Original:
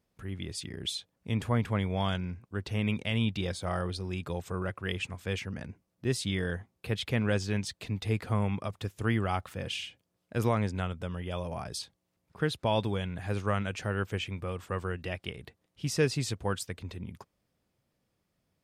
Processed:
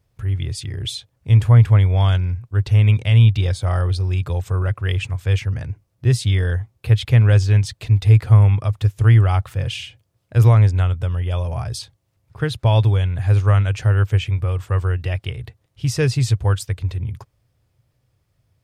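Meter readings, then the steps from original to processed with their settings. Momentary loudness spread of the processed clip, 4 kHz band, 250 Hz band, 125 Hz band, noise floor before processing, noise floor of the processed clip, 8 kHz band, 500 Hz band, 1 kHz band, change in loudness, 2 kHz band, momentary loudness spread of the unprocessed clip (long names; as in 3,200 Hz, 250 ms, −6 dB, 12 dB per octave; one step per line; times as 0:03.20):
13 LU, +6.5 dB, +4.0 dB, +19.0 dB, −80 dBFS, −68 dBFS, can't be measured, +5.5 dB, +6.5 dB, +15.0 dB, +6.5 dB, 10 LU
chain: low shelf with overshoot 150 Hz +8 dB, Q 3
level +6.5 dB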